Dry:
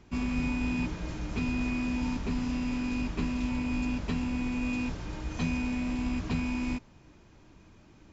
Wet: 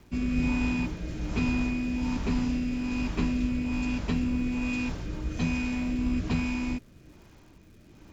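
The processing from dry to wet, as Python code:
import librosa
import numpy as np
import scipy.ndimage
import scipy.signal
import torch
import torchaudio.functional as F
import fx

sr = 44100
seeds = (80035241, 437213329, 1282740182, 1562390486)

y = fx.rotary(x, sr, hz=1.2)
y = fx.dmg_crackle(y, sr, seeds[0], per_s=360.0, level_db=-57.0)
y = y * librosa.db_to_amplitude(4.0)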